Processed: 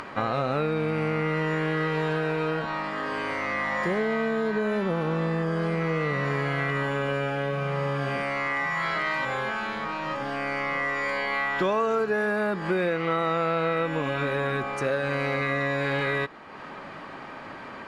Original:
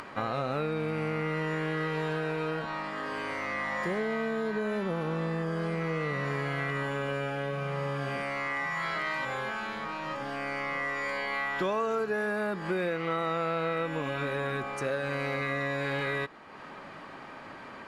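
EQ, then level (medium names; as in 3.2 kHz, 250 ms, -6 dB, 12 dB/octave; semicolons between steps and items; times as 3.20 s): treble shelf 8.1 kHz -7.5 dB; +5.0 dB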